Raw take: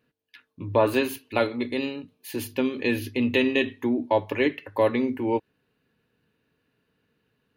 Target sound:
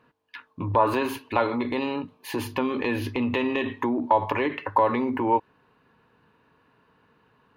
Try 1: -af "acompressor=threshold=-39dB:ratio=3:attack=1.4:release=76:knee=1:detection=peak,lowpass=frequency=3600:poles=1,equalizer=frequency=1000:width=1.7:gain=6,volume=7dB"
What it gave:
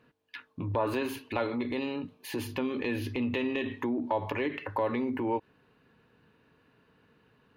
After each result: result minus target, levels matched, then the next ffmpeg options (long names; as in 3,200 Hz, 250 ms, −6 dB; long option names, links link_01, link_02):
1,000 Hz band −4.5 dB; downward compressor: peak gain reduction +4.5 dB
-af "acompressor=threshold=-39dB:ratio=3:attack=1.4:release=76:knee=1:detection=peak,lowpass=frequency=3600:poles=1,equalizer=frequency=1000:width=1.7:gain=14.5,volume=7dB"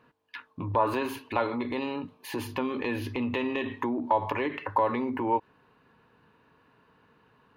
downward compressor: peak gain reduction +4.5 dB
-af "acompressor=threshold=-32.5dB:ratio=3:attack=1.4:release=76:knee=1:detection=peak,lowpass=frequency=3600:poles=1,equalizer=frequency=1000:width=1.7:gain=14.5,volume=7dB"